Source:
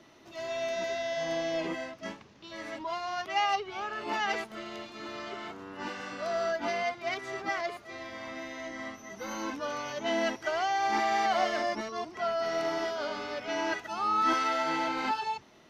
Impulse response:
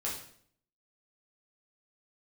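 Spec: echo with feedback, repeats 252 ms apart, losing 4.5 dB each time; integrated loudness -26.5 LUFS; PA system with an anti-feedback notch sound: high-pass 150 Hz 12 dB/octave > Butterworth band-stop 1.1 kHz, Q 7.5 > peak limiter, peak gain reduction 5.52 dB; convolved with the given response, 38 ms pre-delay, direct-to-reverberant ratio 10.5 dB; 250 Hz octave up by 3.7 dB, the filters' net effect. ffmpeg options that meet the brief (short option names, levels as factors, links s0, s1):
-filter_complex "[0:a]equalizer=f=250:t=o:g=5.5,aecho=1:1:252|504|756|1008|1260|1512|1764|2016|2268:0.596|0.357|0.214|0.129|0.0772|0.0463|0.0278|0.0167|0.01,asplit=2[s0][s1];[1:a]atrim=start_sample=2205,adelay=38[s2];[s1][s2]afir=irnorm=-1:irlink=0,volume=0.2[s3];[s0][s3]amix=inputs=2:normalize=0,highpass=150,asuperstop=centerf=1100:order=8:qfactor=7.5,volume=1.5,alimiter=limit=0.168:level=0:latency=1"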